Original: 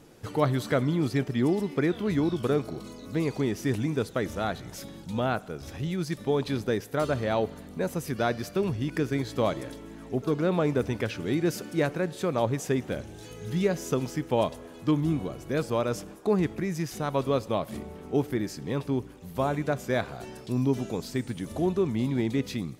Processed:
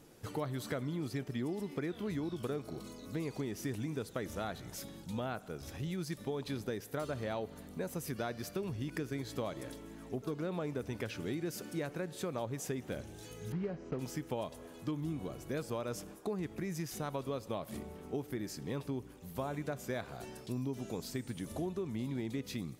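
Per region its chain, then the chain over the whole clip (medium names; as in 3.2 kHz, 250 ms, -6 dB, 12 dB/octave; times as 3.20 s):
13.52–13.99 s: block-companded coder 3-bit + tape spacing loss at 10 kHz 44 dB + band-stop 3.5 kHz, Q 8
whole clip: treble shelf 8.1 kHz +7 dB; compression, threshold -28 dBFS; trim -6 dB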